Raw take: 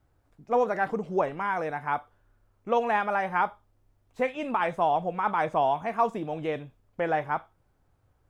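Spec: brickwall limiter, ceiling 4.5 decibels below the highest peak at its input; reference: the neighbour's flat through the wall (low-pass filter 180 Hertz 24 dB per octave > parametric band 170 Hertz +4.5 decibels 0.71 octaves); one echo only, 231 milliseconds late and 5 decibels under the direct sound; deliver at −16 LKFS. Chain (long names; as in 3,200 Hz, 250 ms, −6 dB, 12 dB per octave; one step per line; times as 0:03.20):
brickwall limiter −17.5 dBFS
low-pass filter 180 Hz 24 dB per octave
parametric band 170 Hz +4.5 dB 0.71 octaves
single-tap delay 231 ms −5 dB
level +26.5 dB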